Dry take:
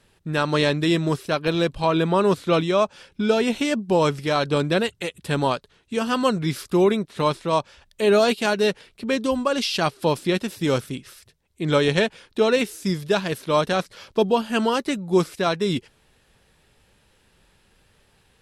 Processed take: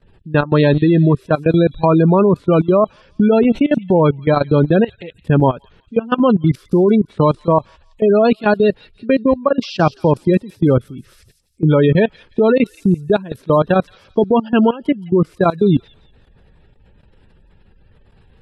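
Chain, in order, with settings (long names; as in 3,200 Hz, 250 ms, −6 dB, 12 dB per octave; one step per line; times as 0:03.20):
gate on every frequency bin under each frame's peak −20 dB strong
spectral tilt −2.5 dB per octave
output level in coarse steps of 19 dB
on a send: delay with a high-pass on its return 172 ms, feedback 31%, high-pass 5,000 Hz, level −6.5 dB
on the sum: level +8 dB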